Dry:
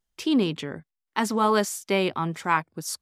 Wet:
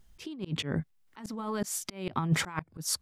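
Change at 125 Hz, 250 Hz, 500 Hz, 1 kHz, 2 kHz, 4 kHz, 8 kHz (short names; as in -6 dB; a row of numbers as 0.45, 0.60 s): +1.0, -9.0, -13.0, -13.0, -8.5, -4.5, -1.0 dB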